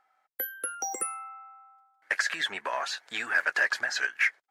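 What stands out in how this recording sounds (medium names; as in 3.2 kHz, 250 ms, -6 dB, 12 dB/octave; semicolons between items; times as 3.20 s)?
noise floor -75 dBFS; spectral tilt 0.0 dB/octave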